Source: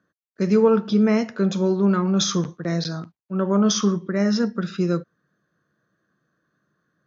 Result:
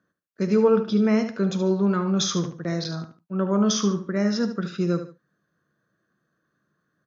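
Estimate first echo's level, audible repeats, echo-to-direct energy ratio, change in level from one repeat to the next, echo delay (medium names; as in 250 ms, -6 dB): -10.0 dB, 2, -9.5 dB, -10.5 dB, 74 ms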